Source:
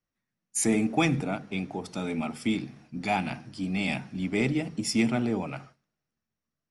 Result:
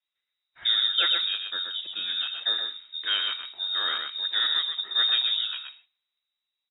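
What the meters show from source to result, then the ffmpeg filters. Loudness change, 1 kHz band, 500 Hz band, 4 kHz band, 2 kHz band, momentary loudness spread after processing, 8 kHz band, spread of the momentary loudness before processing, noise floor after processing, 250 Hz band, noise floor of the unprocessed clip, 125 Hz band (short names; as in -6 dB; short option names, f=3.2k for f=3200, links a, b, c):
+4.0 dB, -5.0 dB, -16.0 dB, +18.5 dB, +1.0 dB, 10 LU, under -40 dB, 10 LU, under -85 dBFS, under -30 dB, under -85 dBFS, under -35 dB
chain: -af "aecho=1:1:123:0.562,lowpass=f=3.3k:t=q:w=0.5098,lowpass=f=3.3k:t=q:w=0.6013,lowpass=f=3.3k:t=q:w=0.9,lowpass=f=3.3k:t=q:w=2.563,afreqshift=-3900"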